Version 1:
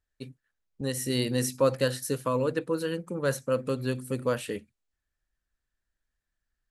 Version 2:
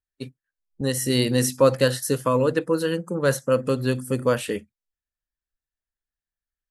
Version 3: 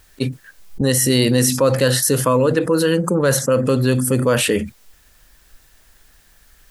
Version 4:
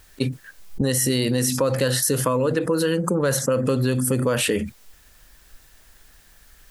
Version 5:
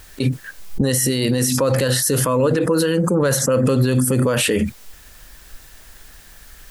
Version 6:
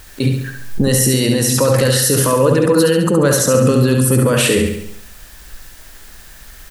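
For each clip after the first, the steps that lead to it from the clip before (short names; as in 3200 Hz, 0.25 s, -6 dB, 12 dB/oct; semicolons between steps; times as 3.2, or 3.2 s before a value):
spectral noise reduction 17 dB; gain +6.5 dB
fast leveller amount 70%
compressor 4:1, threshold -18 dBFS, peak gain reduction 7 dB
limiter -17.5 dBFS, peak gain reduction 9.5 dB; gain +8.5 dB
feedback echo 69 ms, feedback 52%, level -5 dB; gain +3 dB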